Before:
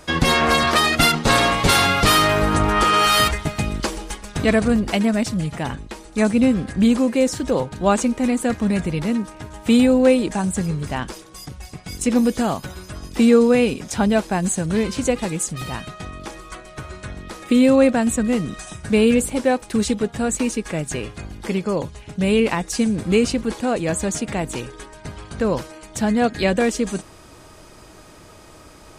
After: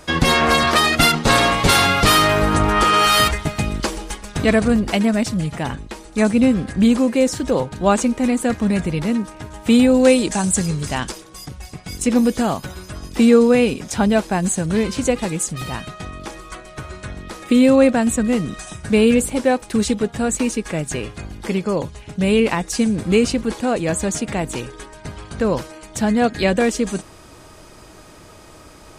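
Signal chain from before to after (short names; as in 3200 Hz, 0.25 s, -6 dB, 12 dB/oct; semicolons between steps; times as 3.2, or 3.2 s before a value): 9.94–11.12 bell 7100 Hz +9.5 dB 2.1 oct; gain +1.5 dB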